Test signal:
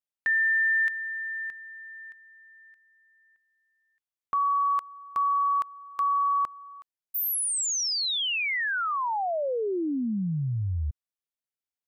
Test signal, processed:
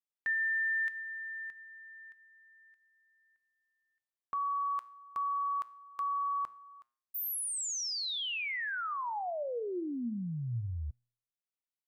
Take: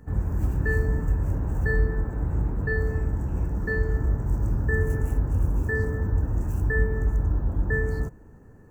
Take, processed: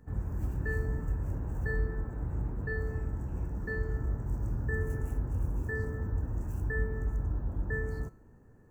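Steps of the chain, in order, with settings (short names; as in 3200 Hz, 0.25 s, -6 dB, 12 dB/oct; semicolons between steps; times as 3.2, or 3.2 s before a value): resonator 120 Hz, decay 0.53 s, harmonics all, mix 50%; gain -3 dB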